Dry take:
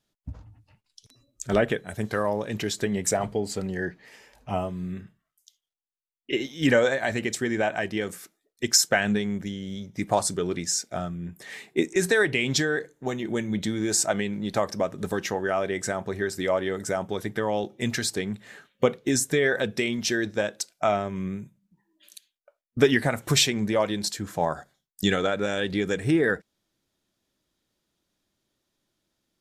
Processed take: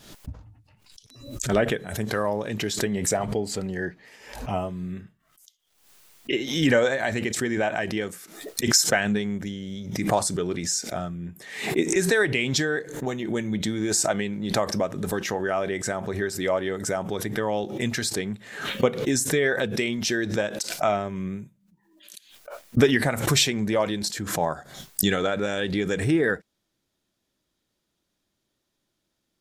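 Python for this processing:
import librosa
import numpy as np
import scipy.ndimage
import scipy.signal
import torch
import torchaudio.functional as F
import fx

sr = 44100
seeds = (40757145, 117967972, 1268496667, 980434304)

y = fx.pre_swell(x, sr, db_per_s=75.0)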